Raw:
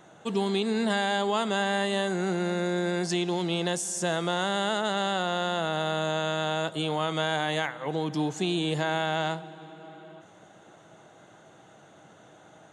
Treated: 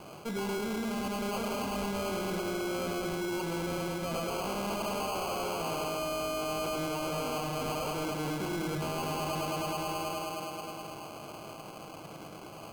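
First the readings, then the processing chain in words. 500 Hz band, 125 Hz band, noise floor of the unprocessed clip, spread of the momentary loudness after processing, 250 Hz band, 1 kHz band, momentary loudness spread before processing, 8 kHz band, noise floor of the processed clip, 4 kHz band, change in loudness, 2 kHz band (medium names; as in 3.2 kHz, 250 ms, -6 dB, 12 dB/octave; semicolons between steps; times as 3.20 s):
-5.0 dB, -5.5 dB, -54 dBFS, 11 LU, -5.0 dB, -5.0 dB, 5 LU, -3.5 dB, -46 dBFS, -8.0 dB, -6.0 dB, -8.0 dB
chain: low-pass 2.4 kHz 24 dB/octave; hum notches 60/120/180/240/300/360 Hz; on a send: bucket-brigade echo 105 ms, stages 1024, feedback 82%, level -5 dB; on the sum: sample-and-hold 24×; reverse; compression, threshold -31 dBFS, peak gain reduction 12 dB; reverse; saturation -36.5 dBFS, distortion -9 dB; trim +6 dB; Opus 96 kbps 48 kHz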